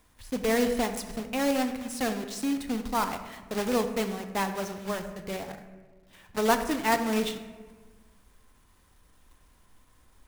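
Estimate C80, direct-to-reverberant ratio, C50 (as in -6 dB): 11.0 dB, 7.5 dB, 9.5 dB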